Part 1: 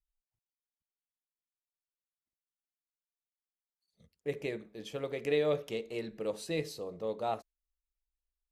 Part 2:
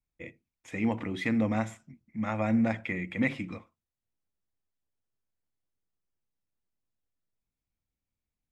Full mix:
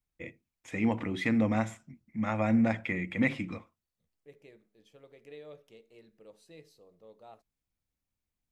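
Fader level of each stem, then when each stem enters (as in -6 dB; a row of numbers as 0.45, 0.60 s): -18.5, +0.5 dB; 0.00, 0.00 s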